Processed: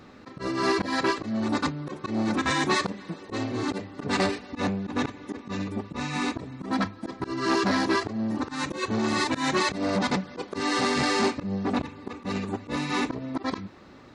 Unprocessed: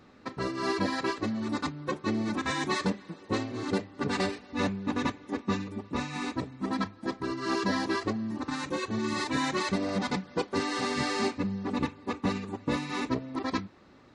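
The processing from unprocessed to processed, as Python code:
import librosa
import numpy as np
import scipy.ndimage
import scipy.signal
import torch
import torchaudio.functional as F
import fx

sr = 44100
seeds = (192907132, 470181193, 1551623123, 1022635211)

y = fx.auto_swell(x, sr, attack_ms=133.0)
y = fx.transformer_sat(y, sr, knee_hz=730.0)
y = F.gain(torch.from_numpy(y), 7.0).numpy()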